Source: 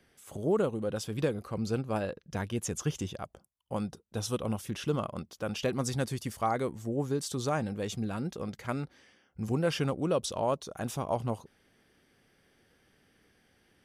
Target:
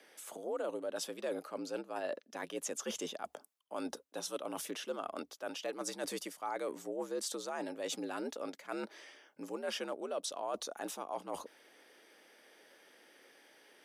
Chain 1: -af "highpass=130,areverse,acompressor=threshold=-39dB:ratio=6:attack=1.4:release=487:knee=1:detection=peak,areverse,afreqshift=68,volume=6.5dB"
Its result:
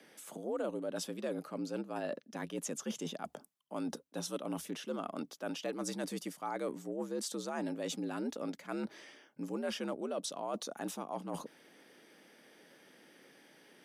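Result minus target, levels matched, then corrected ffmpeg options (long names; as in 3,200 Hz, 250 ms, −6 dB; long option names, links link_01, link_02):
125 Hz band +11.0 dB
-af "highpass=320,areverse,acompressor=threshold=-39dB:ratio=6:attack=1.4:release=487:knee=1:detection=peak,areverse,afreqshift=68,volume=6.5dB"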